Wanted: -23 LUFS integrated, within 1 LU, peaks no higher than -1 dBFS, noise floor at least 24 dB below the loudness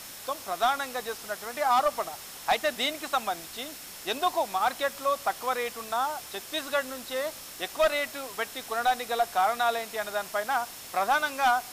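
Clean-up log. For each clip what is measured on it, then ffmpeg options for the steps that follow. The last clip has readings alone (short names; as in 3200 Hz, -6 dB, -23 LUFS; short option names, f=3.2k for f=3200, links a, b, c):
steady tone 5400 Hz; tone level -53 dBFS; noise floor -43 dBFS; noise floor target -53 dBFS; loudness -29.0 LUFS; peak -15.0 dBFS; loudness target -23.0 LUFS
-> -af "bandreject=f=5.4k:w=30"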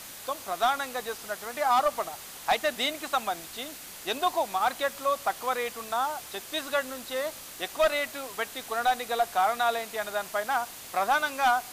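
steady tone none; noise floor -44 dBFS; noise floor target -53 dBFS
-> -af "afftdn=nr=9:nf=-44"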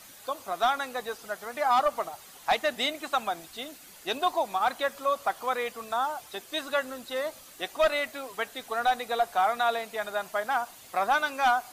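noise floor -50 dBFS; noise floor target -53 dBFS
-> -af "afftdn=nr=6:nf=-50"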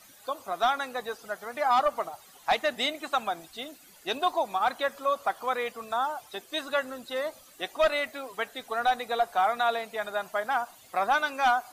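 noise floor -54 dBFS; loudness -29.0 LUFS; peak -15.5 dBFS; loudness target -23.0 LUFS
-> -af "volume=6dB"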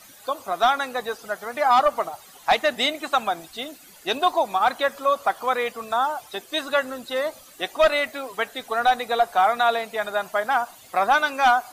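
loudness -23.0 LUFS; peak -9.5 dBFS; noise floor -48 dBFS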